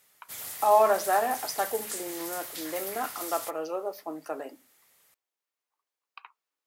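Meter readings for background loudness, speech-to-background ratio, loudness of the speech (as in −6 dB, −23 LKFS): −36.5 LKFS, 7.5 dB, −29.0 LKFS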